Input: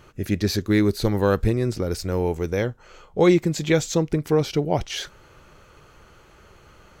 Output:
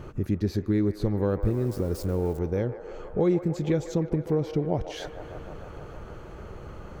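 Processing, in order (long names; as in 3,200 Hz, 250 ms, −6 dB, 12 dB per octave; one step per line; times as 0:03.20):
0:01.41–0:02.39: spike at every zero crossing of −23 dBFS
tilt shelving filter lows +8 dB, about 1,100 Hz
downward compressor 2 to 1, threshold −40 dBFS, peak gain reduction 18.5 dB
on a send: delay with a band-pass on its return 153 ms, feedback 81%, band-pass 980 Hz, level −9.5 dB
on the sum: level +4.5 dB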